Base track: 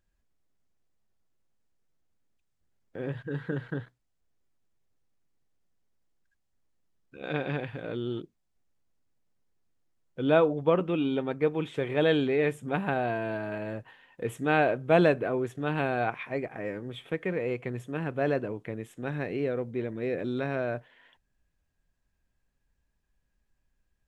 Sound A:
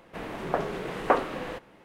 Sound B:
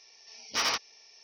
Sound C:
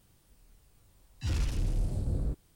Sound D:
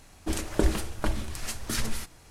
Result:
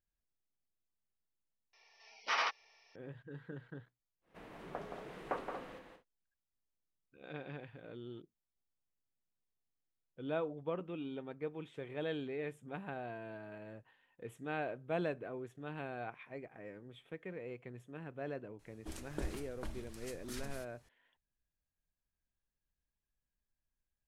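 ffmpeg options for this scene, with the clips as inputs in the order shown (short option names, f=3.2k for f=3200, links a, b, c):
-filter_complex "[0:a]volume=-15dB[a];[2:a]highpass=640,lowpass=2.3k[b];[1:a]aecho=1:1:172|233.2:0.501|0.316[c];[b]atrim=end=1.23,asetpts=PTS-STARTPTS,volume=-0.5dB,afade=t=in:d=0.004:c=hsin,afade=t=out:st=1.226:d=0.004:c=hsin,adelay=1730[d];[c]atrim=end=1.84,asetpts=PTS-STARTPTS,volume=-16.5dB,afade=t=in:d=0.1,afade=t=out:st=1.74:d=0.1,adelay=185661S[e];[4:a]atrim=end=2.3,asetpts=PTS-STARTPTS,volume=-16.5dB,afade=t=in:d=0.004:c=hsin,afade=t=out:st=2.296:d=0.004:c=hsin,adelay=18590[f];[a][d][e][f]amix=inputs=4:normalize=0"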